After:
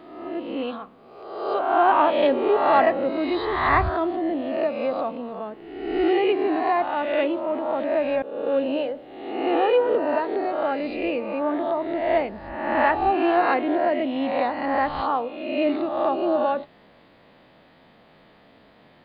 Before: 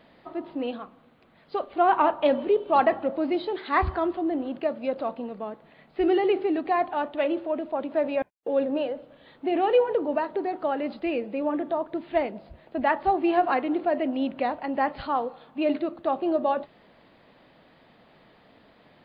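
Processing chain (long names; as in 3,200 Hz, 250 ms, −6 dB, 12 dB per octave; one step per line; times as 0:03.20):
peak hold with a rise ahead of every peak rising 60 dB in 1.06 s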